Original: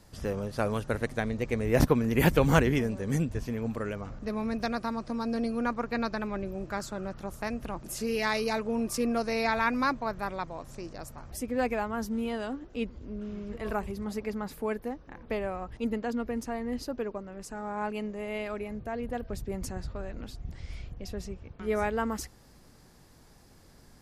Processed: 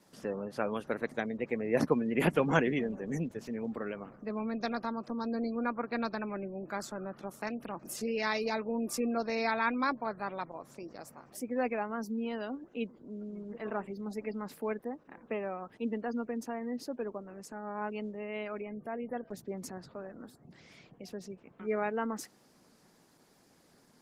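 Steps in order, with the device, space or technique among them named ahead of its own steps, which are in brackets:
0:20.06–0:20.47: flat-topped bell 3,900 Hz −9 dB
noise-suppressed video call (high-pass filter 170 Hz 24 dB per octave; gate on every frequency bin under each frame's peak −30 dB strong; level −3 dB; Opus 16 kbit/s 48,000 Hz)

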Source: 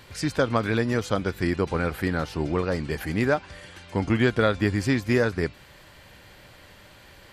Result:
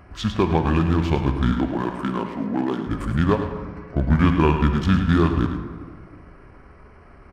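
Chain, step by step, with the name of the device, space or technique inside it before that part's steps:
adaptive Wiener filter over 9 samples
0:01.51–0:02.87: Chebyshev high-pass filter 280 Hz, order 3
monster voice (pitch shifter −6 semitones; low-shelf EQ 240 Hz +4 dB; single-tap delay 106 ms −9.5 dB; convolution reverb RT60 1.9 s, pre-delay 23 ms, DRR 7.5 dB)
dynamic equaliser 3,000 Hz, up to +6 dB, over −50 dBFS, Q 1.7
level +1.5 dB

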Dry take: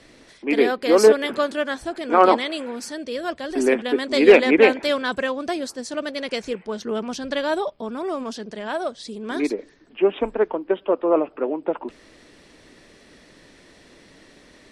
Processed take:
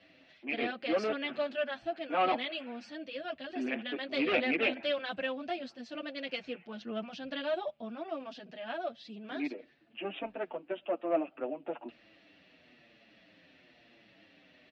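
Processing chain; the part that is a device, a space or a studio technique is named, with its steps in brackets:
barber-pole flanger into a guitar amplifier (barber-pole flanger 7.2 ms −0.98 Hz; soft clipping −13 dBFS, distortion −12 dB; loudspeaker in its box 110–4,200 Hz, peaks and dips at 420 Hz −10 dB, 680 Hz +6 dB, 1,000 Hz −7 dB, 2,700 Hz +9 dB)
level −8 dB

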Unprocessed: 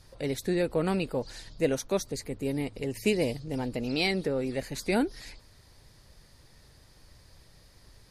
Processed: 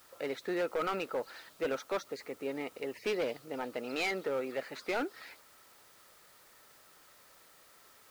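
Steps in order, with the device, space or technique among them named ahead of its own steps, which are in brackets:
drive-through speaker (band-pass filter 460–2,800 Hz; parametric band 1,300 Hz +12 dB 0.23 octaves; hard clipping −28 dBFS, distortion −10 dB; white noise bed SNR 24 dB)

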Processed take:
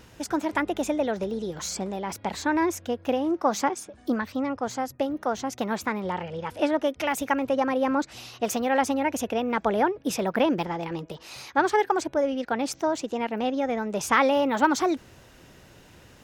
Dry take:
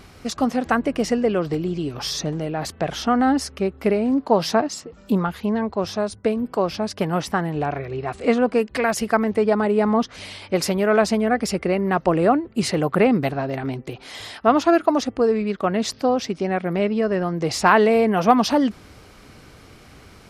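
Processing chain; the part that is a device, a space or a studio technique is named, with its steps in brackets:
nightcore (speed change +25%)
level −5.5 dB

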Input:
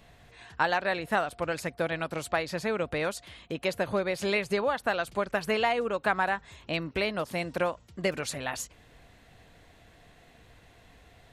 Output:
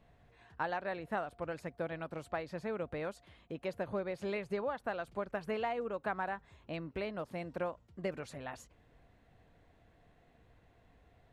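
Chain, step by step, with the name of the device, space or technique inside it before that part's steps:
through cloth (high-shelf EQ 2,300 Hz −13.5 dB)
level −7.5 dB

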